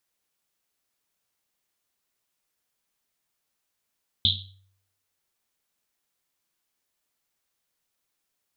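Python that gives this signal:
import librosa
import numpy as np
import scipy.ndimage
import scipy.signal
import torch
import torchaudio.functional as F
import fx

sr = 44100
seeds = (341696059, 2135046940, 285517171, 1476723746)

y = fx.risset_drum(sr, seeds[0], length_s=1.1, hz=96.0, decay_s=0.71, noise_hz=3600.0, noise_width_hz=870.0, noise_pct=70)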